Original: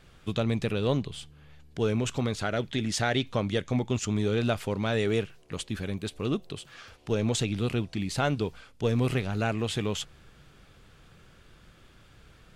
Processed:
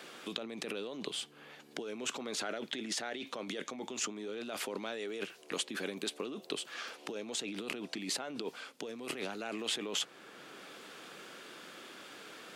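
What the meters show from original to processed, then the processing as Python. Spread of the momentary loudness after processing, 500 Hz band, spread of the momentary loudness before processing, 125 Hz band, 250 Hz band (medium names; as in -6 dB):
12 LU, -10.5 dB, 9 LU, -27.0 dB, -12.5 dB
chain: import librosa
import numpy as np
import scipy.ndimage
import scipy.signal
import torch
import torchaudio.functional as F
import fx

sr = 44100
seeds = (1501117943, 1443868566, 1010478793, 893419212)

y = fx.over_compress(x, sr, threshold_db=-34.0, ratio=-1.0)
y = scipy.signal.sosfilt(scipy.signal.butter(4, 260.0, 'highpass', fs=sr, output='sos'), y)
y = fx.band_squash(y, sr, depth_pct=40)
y = F.gain(torch.from_numpy(y), -2.0).numpy()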